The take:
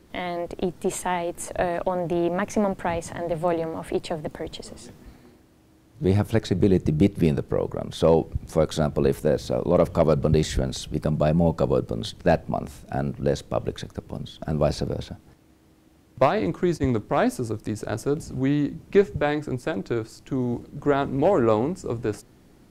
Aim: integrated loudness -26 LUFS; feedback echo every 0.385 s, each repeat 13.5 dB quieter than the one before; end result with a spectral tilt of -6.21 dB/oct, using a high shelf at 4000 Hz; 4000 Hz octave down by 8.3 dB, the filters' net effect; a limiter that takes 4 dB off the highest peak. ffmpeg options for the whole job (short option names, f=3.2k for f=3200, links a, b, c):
-af "highshelf=f=4k:g=-5.5,equalizer=f=4k:t=o:g=-7,alimiter=limit=-10.5dB:level=0:latency=1,aecho=1:1:385|770:0.211|0.0444"